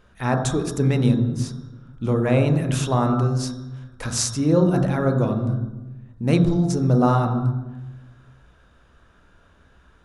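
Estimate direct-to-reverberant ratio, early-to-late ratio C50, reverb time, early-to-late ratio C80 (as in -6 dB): 3.5 dB, 6.5 dB, 1.1 s, 8.5 dB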